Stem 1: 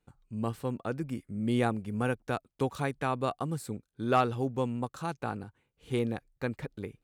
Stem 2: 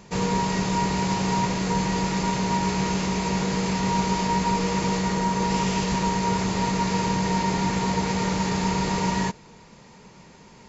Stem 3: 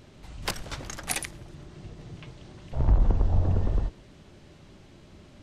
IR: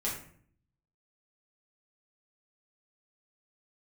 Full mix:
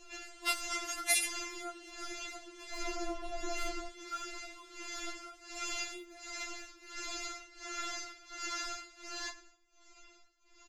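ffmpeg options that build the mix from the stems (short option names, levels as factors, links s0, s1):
-filter_complex "[0:a]highshelf=f=11000:g=10.5,volume=0.237,asplit=2[s0][s1];[1:a]asoftclip=type=tanh:threshold=0.112,tremolo=f=1.4:d=0.92,volume=0.596,asplit=2[s2][s3];[s3]volume=0.266[s4];[2:a]highpass=f=110:p=1,dynaudnorm=f=370:g=3:m=1.58,flanger=delay=16.5:depth=2.8:speed=0.72,volume=1.33[s5];[s1]apad=whole_len=471236[s6];[s2][s6]sidechaincompress=threshold=0.00708:ratio=8:attack=16:release=855[s7];[3:a]atrim=start_sample=2205[s8];[s4][s8]afir=irnorm=-1:irlink=0[s9];[s0][s7][s5][s9]amix=inputs=4:normalize=0,equalizer=f=630:t=o:w=0.73:g=-8,aecho=1:1:7.3:0.56,afftfilt=real='re*4*eq(mod(b,16),0)':imag='im*4*eq(mod(b,16),0)':win_size=2048:overlap=0.75"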